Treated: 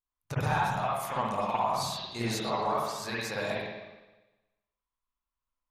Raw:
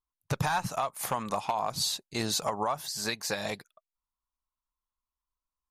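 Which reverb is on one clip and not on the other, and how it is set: spring tank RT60 1.1 s, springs 51/59 ms, chirp 80 ms, DRR -8.5 dB; trim -7.5 dB

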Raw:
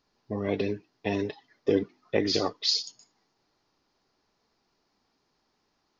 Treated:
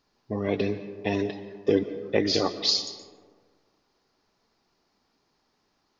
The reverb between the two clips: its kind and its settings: algorithmic reverb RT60 1.7 s, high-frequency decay 0.4×, pre-delay 100 ms, DRR 12.5 dB; trim +2 dB

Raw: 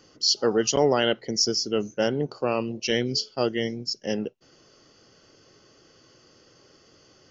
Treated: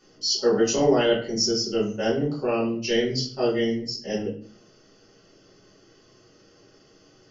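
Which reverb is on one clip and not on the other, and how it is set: simulated room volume 44 m³, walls mixed, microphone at 1.4 m; trim -8.5 dB

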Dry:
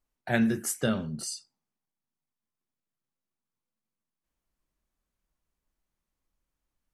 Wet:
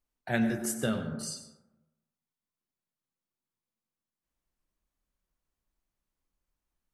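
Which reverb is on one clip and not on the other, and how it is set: plate-style reverb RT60 1 s, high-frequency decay 0.35×, pre-delay 80 ms, DRR 8 dB; trim -3 dB

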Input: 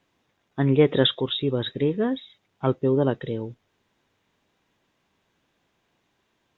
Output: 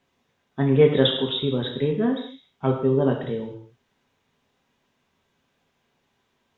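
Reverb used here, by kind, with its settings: gated-style reverb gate 250 ms falling, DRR 1.5 dB; trim -2 dB

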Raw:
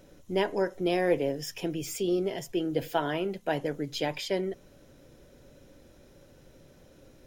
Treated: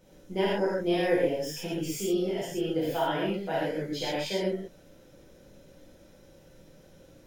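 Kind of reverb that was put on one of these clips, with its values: gated-style reverb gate 160 ms flat, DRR -8 dB; trim -8 dB

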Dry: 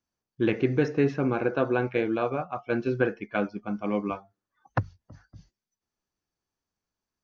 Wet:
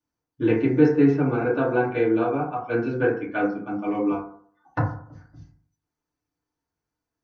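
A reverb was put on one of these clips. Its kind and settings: FDN reverb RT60 0.56 s, low-frequency decay 1×, high-frequency decay 0.3×, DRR -7.5 dB; trim -6 dB

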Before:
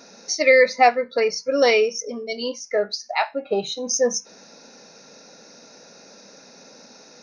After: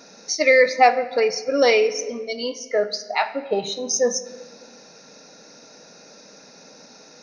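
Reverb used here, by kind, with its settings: simulated room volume 1700 m³, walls mixed, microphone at 0.49 m

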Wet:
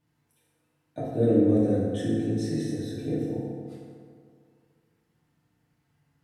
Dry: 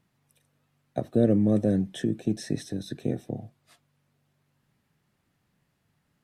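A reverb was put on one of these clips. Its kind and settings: FDN reverb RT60 2.2 s, low-frequency decay 0.95×, high-frequency decay 0.5×, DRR -9 dB; trim -9.5 dB

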